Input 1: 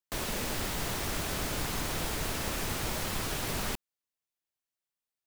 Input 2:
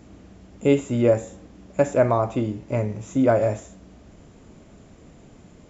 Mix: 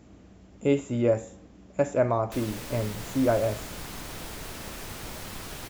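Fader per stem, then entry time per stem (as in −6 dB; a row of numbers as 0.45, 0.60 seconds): −5.5, −5.0 decibels; 2.20, 0.00 seconds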